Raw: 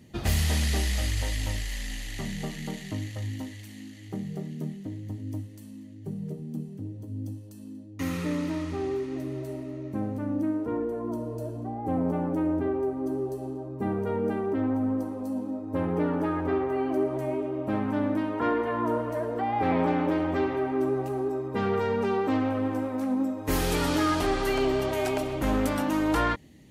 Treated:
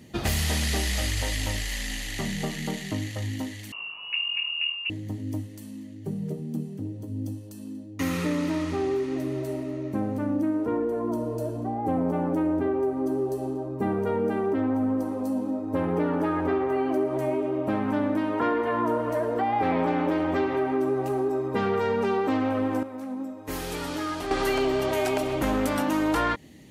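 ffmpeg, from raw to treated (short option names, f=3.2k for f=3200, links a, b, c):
-filter_complex "[0:a]asettb=1/sr,asplit=3[a][b][c];[a]atrim=end=3.724[d];[b]atrim=start=3.72:end=4.9,asetpts=PTS-STARTPTS,afade=t=in:d=0.004:c=qsin,afade=t=out:st=1.176:d=0.004:c=qsin,lowpass=f=2.6k:t=q:w=0.5098,lowpass=f=2.6k:t=q:w=0.6013,lowpass=f=2.6k:t=q:w=0.9,lowpass=f=2.6k:t=q:w=2.563,afreqshift=-3000[e];[c]atrim=start=4.896[f];[d][e]acrossfade=d=0.004:c1=hsin:c2=qsin[g];[g][f]acrossfade=d=0.004:c1=qsin:c2=hsin,asplit=3[h][i][j];[h]atrim=end=22.832[k];[i]atrim=start=22.828:end=24.312,asetpts=PTS-STARTPTS,volume=-11dB[l];[j]atrim=start=24.308[m];[k][l]acrossfade=d=0.004:c1=hsin:c2=hsin[n];[n][m]acrossfade=d=0.004:c1=hsin:c2=hsin,lowshelf=f=150:g=-6.5,acompressor=threshold=-29dB:ratio=2.5,volume=6dB"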